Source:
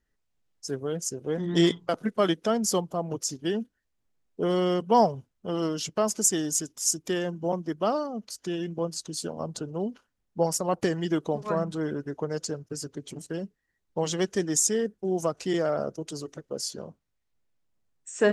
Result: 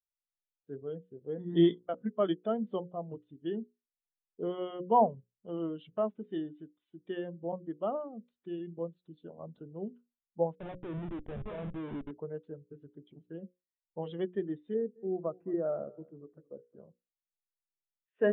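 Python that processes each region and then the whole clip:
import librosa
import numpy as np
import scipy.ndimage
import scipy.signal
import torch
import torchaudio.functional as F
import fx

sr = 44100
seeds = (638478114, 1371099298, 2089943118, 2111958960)

y = fx.chain(x, sr, fx.lowpass(hz=1800.0, slope=12),
    fx.schmitt(flips_db=-35.0), at=(10.55, 12.11))
y = fx.chain(y, sr, fx.lowpass(hz=1600.0, slope=24),
    fx.echo_single(ms=217, db=-17.0), at=(14.74, 16.76))
y = scipy.signal.sosfilt(scipy.signal.butter(16, 3700.0, 'lowpass', fs=sr, output='sos'), y)
y = fx.hum_notches(y, sr, base_hz=60, count=9)
y = fx.spectral_expand(y, sr, expansion=1.5)
y = y * librosa.db_to_amplitude(-3.5)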